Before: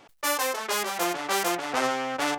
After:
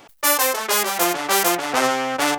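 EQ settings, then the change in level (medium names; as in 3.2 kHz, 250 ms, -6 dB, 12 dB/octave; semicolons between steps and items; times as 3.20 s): treble shelf 10 kHz +10 dB; +6.5 dB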